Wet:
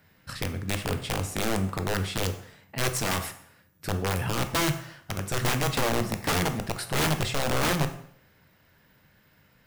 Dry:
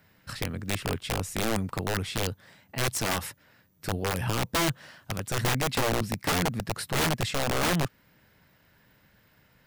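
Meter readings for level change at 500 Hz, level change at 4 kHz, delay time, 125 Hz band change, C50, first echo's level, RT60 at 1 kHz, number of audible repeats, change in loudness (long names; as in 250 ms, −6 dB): +1.0 dB, +0.5 dB, no echo audible, +1.5 dB, 11.0 dB, no echo audible, 0.60 s, no echo audible, +1.0 dB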